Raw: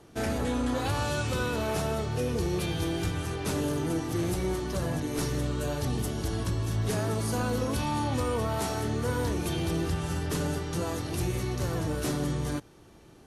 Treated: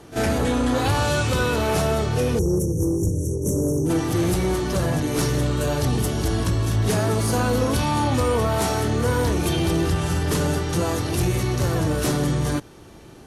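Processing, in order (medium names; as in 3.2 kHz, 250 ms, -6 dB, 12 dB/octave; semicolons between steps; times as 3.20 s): spectral selection erased 2.39–3.90 s, 590–5500 Hz; pre-echo 39 ms -14 dB; Chebyshev shaper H 5 -27 dB, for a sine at -18.5 dBFS; trim +7.5 dB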